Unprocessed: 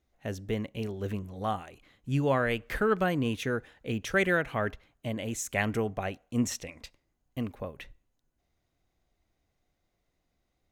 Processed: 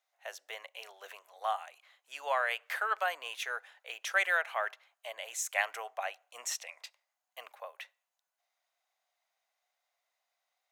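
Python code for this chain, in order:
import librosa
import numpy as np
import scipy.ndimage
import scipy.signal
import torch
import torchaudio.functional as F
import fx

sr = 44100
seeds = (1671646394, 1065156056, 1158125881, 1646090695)

y = scipy.signal.sosfilt(scipy.signal.butter(6, 650.0, 'highpass', fs=sr, output='sos'), x)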